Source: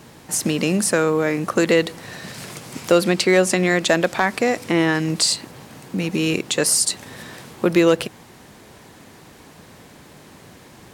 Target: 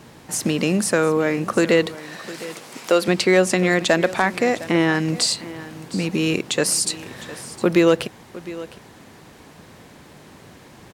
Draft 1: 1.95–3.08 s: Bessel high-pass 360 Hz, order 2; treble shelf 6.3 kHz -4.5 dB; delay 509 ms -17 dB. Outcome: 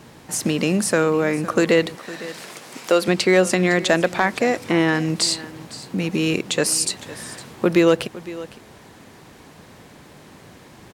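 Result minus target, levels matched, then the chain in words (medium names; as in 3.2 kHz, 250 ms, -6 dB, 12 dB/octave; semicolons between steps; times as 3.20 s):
echo 200 ms early
1.95–3.08 s: Bessel high-pass 360 Hz, order 2; treble shelf 6.3 kHz -4.5 dB; delay 709 ms -17 dB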